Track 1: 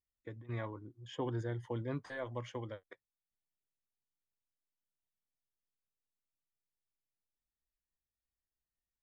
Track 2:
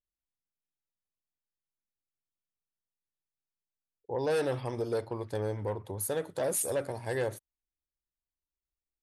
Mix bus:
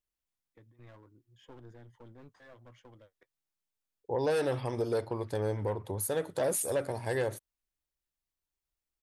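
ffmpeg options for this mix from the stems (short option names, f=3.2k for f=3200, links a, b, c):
-filter_complex "[0:a]aeval=exprs='clip(val(0),-1,0.00562)':c=same,adelay=300,volume=-11.5dB[a];[1:a]volume=2.5dB[b];[a][b]amix=inputs=2:normalize=0,alimiter=limit=-22dB:level=0:latency=1:release=222"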